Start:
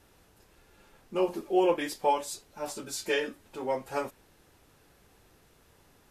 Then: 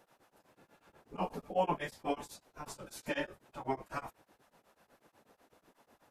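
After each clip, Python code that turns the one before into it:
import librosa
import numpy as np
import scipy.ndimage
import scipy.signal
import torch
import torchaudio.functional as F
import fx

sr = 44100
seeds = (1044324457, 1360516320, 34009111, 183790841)

y = fx.tilt_shelf(x, sr, db=7.0, hz=1300.0)
y = fx.spec_gate(y, sr, threshold_db=-10, keep='weak')
y = y * np.abs(np.cos(np.pi * 8.1 * np.arange(len(y)) / sr))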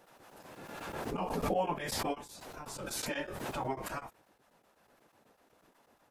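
y = fx.pre_swell(x, sr, db_per_s=24.0)
y = F.gain(torch.from_numpy(y), -2.0).numpy()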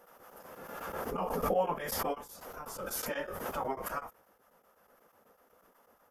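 y = fx.graphic_eq_31(x, sr, hz=(125, 315, 500, 1250, 2500, 4000, 8000, 12500), db=(-12, -6, 6, 7, -5, -10, -5, 11))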